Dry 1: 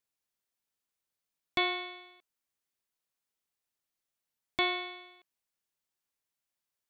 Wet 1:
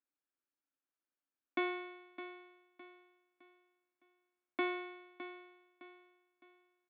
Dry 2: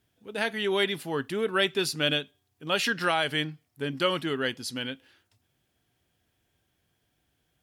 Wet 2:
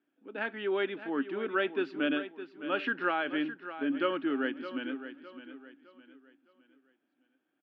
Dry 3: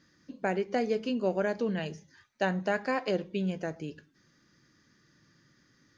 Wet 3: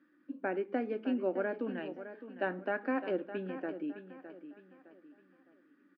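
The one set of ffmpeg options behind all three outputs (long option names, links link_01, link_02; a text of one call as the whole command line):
ffmpeg -i in.wav -filter_complex "[0:a]highpass=frequency=280:width=0.5412,highpass=frequency=280:width=1.3066,equalizer=frequency=280:width_type=q:width=4:gain=9,equalizer=frequency=450:width_type=q:width=4:gain=-8,equalizer=frequency=690:width_type=q:width=4:gain=-7,equalizer=frequency=1000:width_type=q:width=4:gain=-7,equalizer=frequency=2000:width_type=q:width=4:gain=-9,lowpass=frequency=2200:width=0.5412,lowpass=frequency=2200:width=1.3066,asplit=2[link_01][link_02];[link_02]aecho=0:1:611|1222|1833|2444:0.251|0.0904|0.0326|0.0117[link_03];[link_01][link_03]amix=inputs=2:normalize=0" out.wav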